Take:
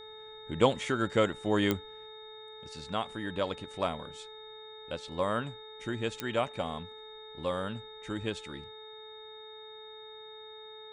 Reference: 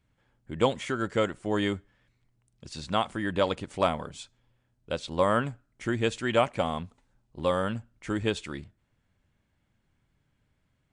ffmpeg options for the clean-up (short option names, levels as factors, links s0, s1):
-af "adeclick=t=4,bandreject=f=434:t=h:w=4,bandreject=f=868:t=h:w=4,bandreject=f=1302:t=h:w=4,bandreject=f=1736:t=h:w=4,bandreject=f=2170:t=h:w=4,bandreject=f=3700:w=30,asetnsamples=n=441:p=0,asendcmd='2.06 volume volume 6.5dB',volume=1"